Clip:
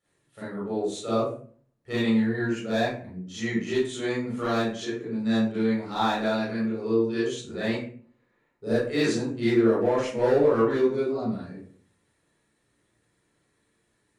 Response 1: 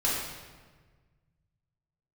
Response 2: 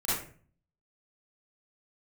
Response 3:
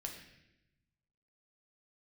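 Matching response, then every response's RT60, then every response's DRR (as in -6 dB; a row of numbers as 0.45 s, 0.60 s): 2; 1.5 s, 0.45 s, 0.90 s; -7.0 dB, -11.0 dB, 1.0 dB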